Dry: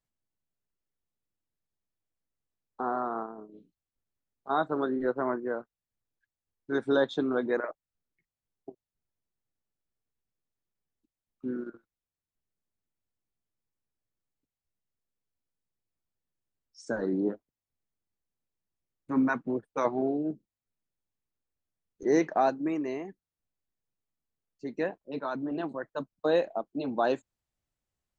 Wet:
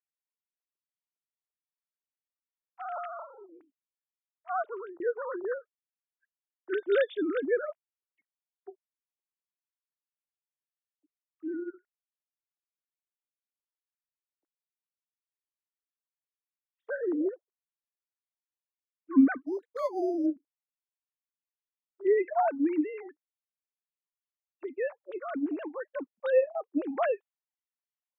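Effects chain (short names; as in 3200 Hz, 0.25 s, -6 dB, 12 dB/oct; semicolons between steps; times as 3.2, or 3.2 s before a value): sine-wave speech; 4.59–5 fade out; 19.46–20.26 decimation joined by straight lines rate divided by 8×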